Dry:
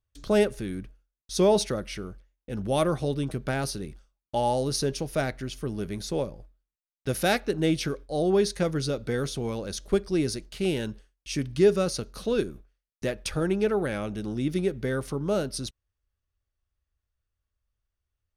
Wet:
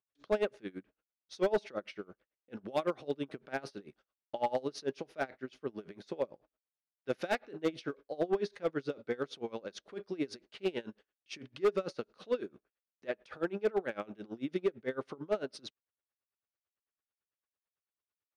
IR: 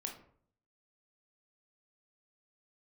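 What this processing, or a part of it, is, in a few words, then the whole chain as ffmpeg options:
helicopter radio: -af "highpass=310,lowpass=3000,aeval=exprs='val(0)*pow(10,-25*(0.5-0.5*cos(2*PI*9*n/s))/20)':channel_layout=same,asoftclip=type=hard:threshold=-22.5dB"

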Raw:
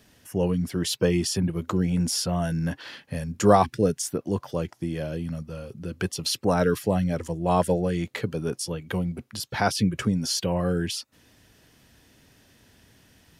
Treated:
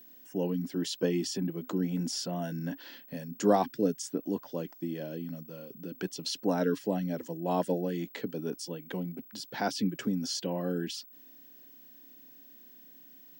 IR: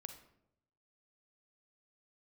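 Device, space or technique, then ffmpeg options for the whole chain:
old television with a line whistle: -af "highpass=frequency=170:width=0.5412,highpass=frequency=170:width=1.3066,equalizer=frequency=280:width_type=q:width=4:gain=9,equalizer=frequency=1200:width_type=q:width=4:gain=-7,equalizer=frequency=2300:width_type=q:width=4:gain=-4,lowpass=frequency=8000:width=0.5412,lowpass=frequency=8000:width=1.3066,aeval=exprs='val(0)+0.00631*sin(2*PI*15734*n/s)':channel_layout=same,volume=-7dB"

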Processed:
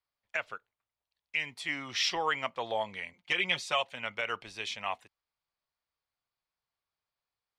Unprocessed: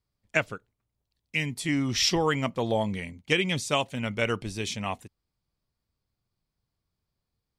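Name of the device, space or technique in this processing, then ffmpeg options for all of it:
DJ mixer with the lows and highs turned down: -filter_complex "[0:a]acrossover=split=600 4400:gain=0.0891 1 0.178[link_01][link_02][link_03];[link_01][link_02][link_03]amix=inputs=3:normalize=0,alimiter=limit=-18dB:level=0:latency=1:release=115,asettb=1/sr,asplit=3[link_04][link_05][link_06];[link_04]atrim=end=3.134[link_07];[link_05]atrim=start=3.13:end=3.83,asetpts=PTS-STARTPTS,afade=type=in:duration=0.004:curve=qsin,afade=type=out:start_time=0.696:duration=0.004:curve=qsin,aecho=1:1:5.6:0.84,atrim=end_sample=30870[link_08];[link_06]atrim=start=3.826[link_09];[link_07][link_08]acrossfade=duration=0.004:curve1=hsin:curve2=qsin[link_10];[link_10][link_09]acrossfade=duration=0.004:curve1=qsin:curve2=hsin"

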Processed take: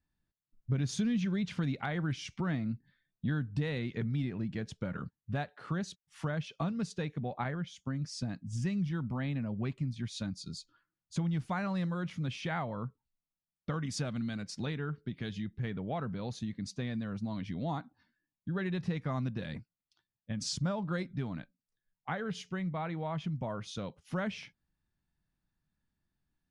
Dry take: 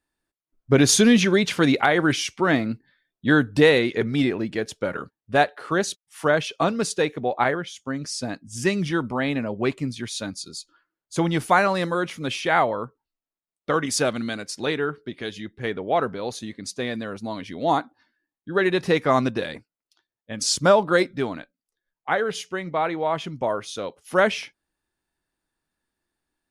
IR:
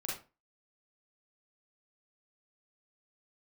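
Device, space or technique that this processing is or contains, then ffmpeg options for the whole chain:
jukebox: -af "lowpass=6400,lowshelf=frequency=250:width_type=q:width=1.5:gain=12,acompressor=threshold=-26dB:ratio=3,volume=-8dB"

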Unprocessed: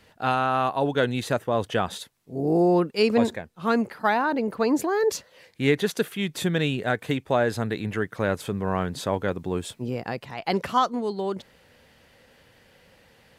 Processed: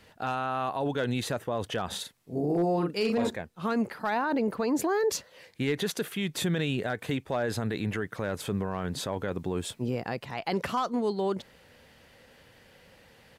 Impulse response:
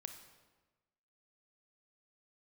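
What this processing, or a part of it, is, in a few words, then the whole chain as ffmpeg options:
clipper into limiter: -filter_complex "[0:a]asplit=3[link_01][link_02][link_03];[link_01]afade=type=out:start_time=1.9:duration=0.02[link_04];[link_02]asplit=2[link_05][link_06];[link_06]adelay=41,volume=-6dB[link_07];[link_05][link_07]amix=inputs=2:normalize=0,afade=type=in:start_time=1.9:duration=0.02,afade=type=out:start_time=3.28:duration=0.02[link_08];[link_03]afade=type=in:start_time=3.28:duration=0.02[link_09];[link_04][link_08][link_09]amix=inputs=3:normalize=0,asoftclip=type=hard:threshold=-12dB,alimiter=limit=-20dB:level=0:latency=1:release=38"

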